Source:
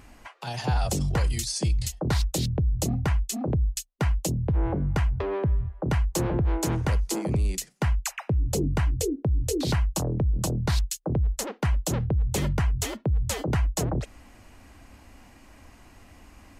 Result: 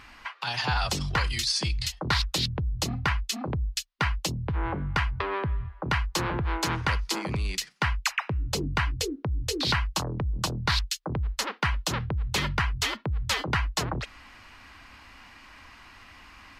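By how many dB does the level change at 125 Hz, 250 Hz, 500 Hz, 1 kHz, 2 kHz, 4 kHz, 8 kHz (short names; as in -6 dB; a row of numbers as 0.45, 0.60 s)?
-5.0, -5.0, -4.5, +4.5, +8.5, +7.5, -2.5 dB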